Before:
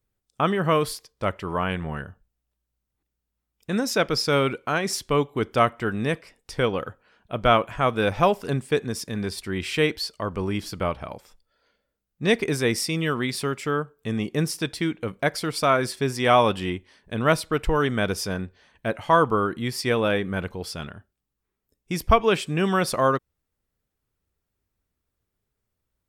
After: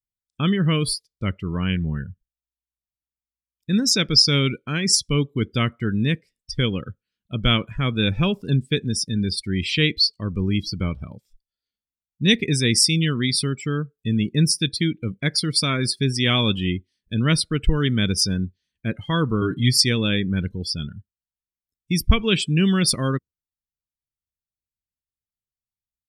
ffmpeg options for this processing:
-filter_complex "[0:a]asettb=1/sr,asplit=3[s0][s1][s2];[s0]atrim=end=19.414[s3];[s1]atrim=start=19.41:end=19.84,asetpts=PTS-STARTPTS,afade=t=in:d=0.004:c=qsin,afade=t=out:st=0.426:d=0.004:c=qsin,aecho=1:1:7.1:0.98,atrim=end_sample=18963[s4];[s2]atrim=start=19.836[s5];[s3][s4]acrossfade=d=0.004:c1=hsin:c2=qsin[s6];[s6][s5]acrossfade=d=0.004:c1=qsin:c2=hsin,afftdn=nr=27:nf=-34,firequalizer=gain_entry='entry(180,0);entry(700,-23);entry(1900,-6);entry(3800,5)':delay=0.05:min_phase=1,volume=2.37"

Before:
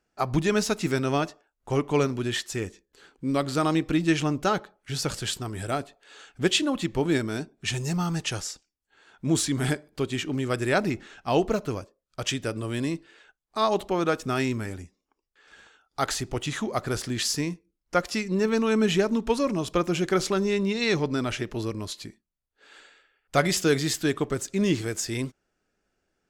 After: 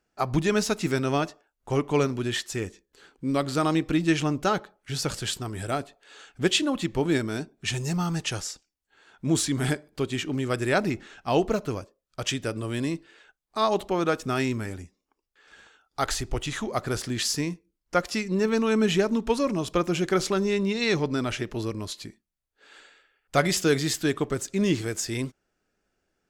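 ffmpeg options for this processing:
-filter_complex "[0:a]asplit=3[s0][s1][s2];[s0]afade=t=out:st=16.01:d=0.02[s3];[s1]asubboost=boost=4:cutoff=70,afade=t=in:st=16.01:d=0.02,afade=t=out:st=16.68:d=0.02[s4];[s2]afade=t=in:st=16.68:d=0.02[s5];[s3][s4][s5]amix=inputs=3:normalize=0"

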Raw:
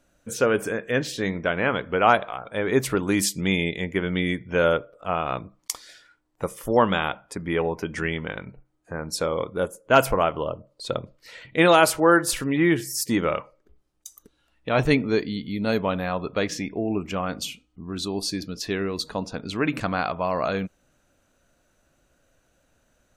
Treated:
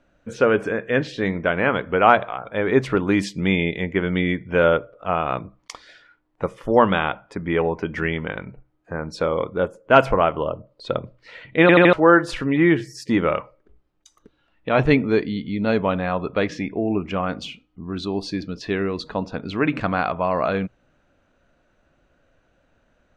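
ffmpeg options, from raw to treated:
-filter_complex "[0:a]asplit=5[s0][s1][s2][s3][s4];[s0]atrim=end=11.692[s5];[s1]atrim=start=11.608:end=11.692[s6];[s2]atrim=start=11.608:end=11.692[s7];[s3]atrim=start=11.608:end=11.692[s8];[s4]atrim=start=11.928[s9];[s5][s6]acrossfade=d=0.004:c1=hsin:c2=hsin[s10];[s10][s7]acrossfade=d=0.004:c1=hsin:c2=hsin[s11];[s11][s8]acrossfade=d=0.004:c1=hsin:c2=hsin[s12];[s12][s9]acrossfade=d=0.004:c1=hsin:c2=hsin,lowpass=3000,bandreject=f=60:t=h:w=6,bandreject=f=120:t=h:w=6,volume=1.5"

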